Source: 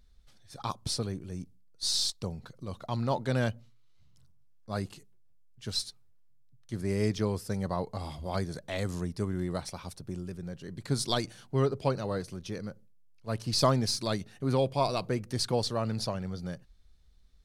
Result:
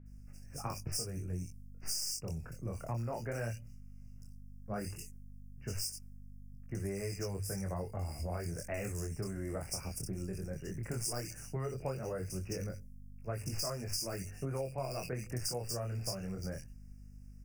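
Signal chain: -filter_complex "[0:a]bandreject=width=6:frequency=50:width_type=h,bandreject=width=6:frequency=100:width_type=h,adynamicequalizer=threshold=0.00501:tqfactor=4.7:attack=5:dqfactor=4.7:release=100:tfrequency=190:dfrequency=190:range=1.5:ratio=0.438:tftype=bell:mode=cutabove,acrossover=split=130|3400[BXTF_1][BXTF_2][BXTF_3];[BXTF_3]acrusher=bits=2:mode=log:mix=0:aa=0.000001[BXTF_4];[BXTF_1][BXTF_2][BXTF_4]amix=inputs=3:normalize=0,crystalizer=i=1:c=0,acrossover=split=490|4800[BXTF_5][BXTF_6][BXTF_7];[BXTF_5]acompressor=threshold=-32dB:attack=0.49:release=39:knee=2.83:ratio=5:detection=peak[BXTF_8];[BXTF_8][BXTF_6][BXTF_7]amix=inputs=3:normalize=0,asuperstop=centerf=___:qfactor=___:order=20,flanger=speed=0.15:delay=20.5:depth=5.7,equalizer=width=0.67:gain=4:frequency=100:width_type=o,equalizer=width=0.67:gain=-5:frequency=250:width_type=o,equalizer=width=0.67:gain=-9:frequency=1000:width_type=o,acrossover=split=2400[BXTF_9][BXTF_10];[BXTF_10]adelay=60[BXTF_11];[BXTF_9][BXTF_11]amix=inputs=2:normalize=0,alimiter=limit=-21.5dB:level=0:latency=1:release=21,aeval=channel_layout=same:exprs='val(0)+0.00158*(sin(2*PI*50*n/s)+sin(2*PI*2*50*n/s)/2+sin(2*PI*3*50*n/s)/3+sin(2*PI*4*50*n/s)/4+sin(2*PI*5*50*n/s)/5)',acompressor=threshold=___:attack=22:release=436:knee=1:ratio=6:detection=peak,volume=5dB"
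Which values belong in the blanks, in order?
3700, 1.9, -40dB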